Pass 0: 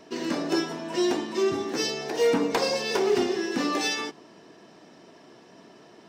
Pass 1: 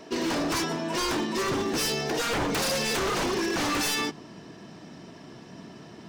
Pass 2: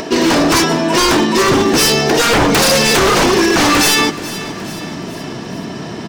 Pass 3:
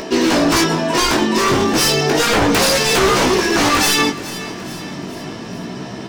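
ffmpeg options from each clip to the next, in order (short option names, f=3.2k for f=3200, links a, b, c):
-af "asubboost=boost=4.5:cutoff=200,aeval=exprs='0.0473*(abs(mod(val(0)/0.0473+3,4)-2)-1)':c=same,volume=4.5dB"
-filter_complex "[0:a]aecho=1:1:425|850|1275|1700:0.141|0.0692|0.0339|0.0166,asplit=2[a][b];[b]acompressor=mode=upward:threshold=-30dB:ratio=2.5,volume=2dB[c];[a][c]amix=inputs=2:normalize=0,volume=8.5dB"
-af "flanger=delay=15.5:depth=6.9:speed=0.33"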